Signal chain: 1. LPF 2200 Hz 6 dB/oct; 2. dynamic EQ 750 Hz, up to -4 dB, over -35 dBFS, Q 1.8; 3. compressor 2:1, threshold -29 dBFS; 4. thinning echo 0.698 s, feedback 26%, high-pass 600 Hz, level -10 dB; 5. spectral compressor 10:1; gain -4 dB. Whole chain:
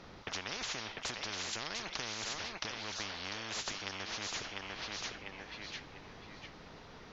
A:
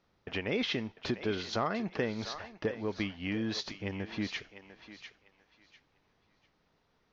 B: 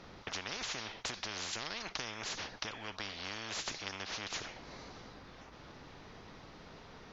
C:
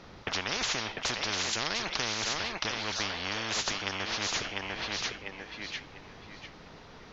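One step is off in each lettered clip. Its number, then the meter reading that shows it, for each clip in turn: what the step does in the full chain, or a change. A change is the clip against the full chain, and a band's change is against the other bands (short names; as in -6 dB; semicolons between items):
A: 5, 8 kHz band -16.5 dB; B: 4, momentary loudness spread change +2 LU; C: 3, mean gain reduction 3.0 dB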